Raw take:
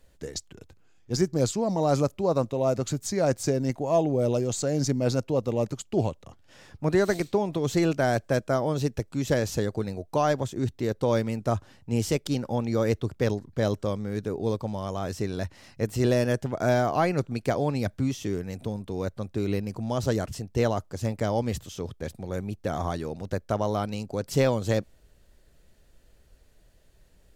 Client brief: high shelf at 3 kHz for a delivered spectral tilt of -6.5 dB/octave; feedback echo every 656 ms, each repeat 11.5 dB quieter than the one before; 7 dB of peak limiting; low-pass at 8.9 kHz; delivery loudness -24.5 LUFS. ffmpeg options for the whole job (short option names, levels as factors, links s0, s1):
-af "lowpass=8900,highshelf=f=3000:g=-5,alimiter=limit=0.112:level=0:latency=1,aecho=1:1:656|1312|1968:0.266|0.0718|0.0194,volume=1.88"